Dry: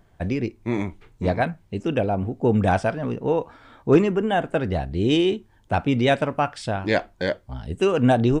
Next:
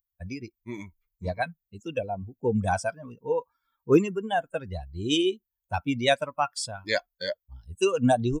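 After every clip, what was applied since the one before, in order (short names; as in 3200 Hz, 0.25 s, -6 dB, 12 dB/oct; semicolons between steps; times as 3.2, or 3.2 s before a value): per-bin expansion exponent 2; tone controls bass -4 dB, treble +12 dB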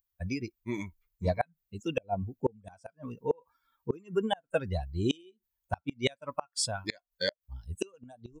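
flipped gate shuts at -18 dBFS, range -33 dB; gain +2.5 dB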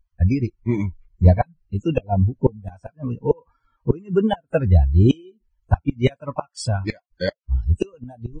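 RIAA curve playback; notch 3600 Hz, Q 6.9; gain +6.5 dB; Vorbis 16 kbps 22050 Hz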